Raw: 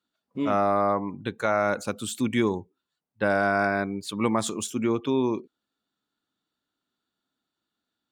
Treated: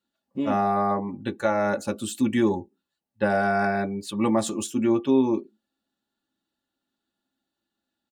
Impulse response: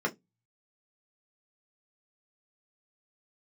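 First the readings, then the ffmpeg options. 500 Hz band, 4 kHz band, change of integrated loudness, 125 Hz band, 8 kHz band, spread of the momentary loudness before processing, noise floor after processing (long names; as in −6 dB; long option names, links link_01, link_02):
+0.5 dB, −1.5 dB, +1.5 dB, +1.0 dB, −0.5 dB, 8 LU, −85 dBFS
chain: -filter_complex "[0:a]aecho=1:1:3.5:0.35,asplit=2[link_01][link_02];[link_02]lowshelf=frequency=250:gain=10.5[link_03];[1:a]atrim=start_sample=2205,asetrate=79380,aresample=44100[link_04];[link_03][link_04]afir=irnorm=-1:irlink=0,volume=-9.5dB[link_05];[link_01][link_05]amix=inputs=2:normalize=0"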